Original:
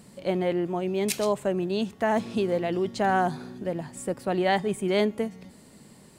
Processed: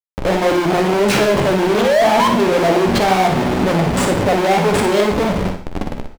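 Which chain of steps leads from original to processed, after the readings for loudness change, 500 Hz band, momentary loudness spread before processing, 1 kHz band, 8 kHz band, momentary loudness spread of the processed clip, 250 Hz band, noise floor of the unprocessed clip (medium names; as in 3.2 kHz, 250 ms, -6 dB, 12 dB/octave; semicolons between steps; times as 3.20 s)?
+12.0 dB, +12.0 dB, 9 LU, +13.0 dB, +11.5 dB, 6 LU, +11.5 dB, -53 dBFS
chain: treble shelf 11 kHz -4 dB; level rider gain up to 11.5 dB; painted sound rise, 1.63–2.28 s, 340–1100 Hz -19 dBFS; Schmitt trigger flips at -31.5 dBFS; overdrive pedal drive 24 dB, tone 2.8 kHz, clips at -11.5 dBFS; flange 1.9 Hz, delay 9.8 ms, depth 6.9 ms, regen -51%; on a send: early reflections 47 ms -11.5 dB, 59 ms -8 dB; on the sum: gated-style reverb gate 160 ms flat, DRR 9 dB; trim +5.5 dB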